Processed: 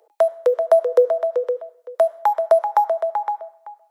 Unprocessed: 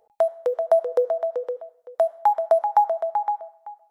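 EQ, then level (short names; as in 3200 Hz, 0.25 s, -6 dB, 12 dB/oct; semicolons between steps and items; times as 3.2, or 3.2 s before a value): steep high-pass 300 Hz 72 dB/oct; bell 770 Hz -10.5 dB 0.29 oct; +7.0 dB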